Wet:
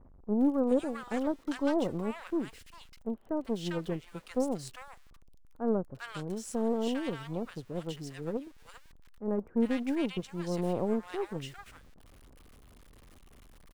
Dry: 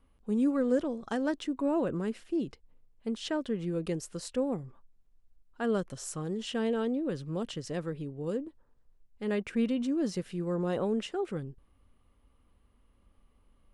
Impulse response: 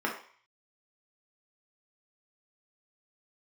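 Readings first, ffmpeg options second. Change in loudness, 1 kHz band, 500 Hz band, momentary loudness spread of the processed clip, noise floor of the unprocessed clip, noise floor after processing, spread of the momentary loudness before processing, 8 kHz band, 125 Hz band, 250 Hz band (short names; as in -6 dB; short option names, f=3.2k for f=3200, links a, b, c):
-0.5 dB, +1.0 dB, -0.5 dB, 12 LU, -67 dBFS, -56 dBFS, 9 LU, -3.5 dB, -1.5 dB, -0.5 dB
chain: -filter_complex "[0:a]aeval=exprs='val(0)+0.5*0.00841*sgn(val(0))':c=same,aeval=exprs='0.158*(cos(1*acos(clip(val(0)/0.158,-1,1)))-cos(1*PI/2))+0.00891*(cos(4*acos(clip(val(0)/0.158,-1,1)))-cos(4*PI/2))+0.0141*(cos(7*acos(clip(val(0)/0.158,-1,1)))-cos(7*PI/2))+0.00126*(cos(8*acos(clip(val(0)/0.158,-1,1)))-cos(8*PI/2))':c=same,acrossover=split=1100[a][b];[b]adelay=400[c];[a][c]amix=inputs=2:normalize=0"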